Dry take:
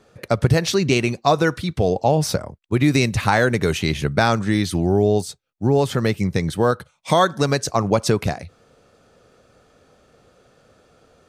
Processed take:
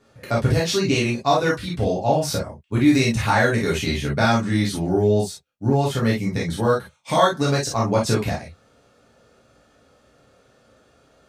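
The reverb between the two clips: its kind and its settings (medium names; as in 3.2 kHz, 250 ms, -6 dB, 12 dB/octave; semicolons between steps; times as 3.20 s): gated-style reverb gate 80 ms flat, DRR -5 dB; trim -7 dB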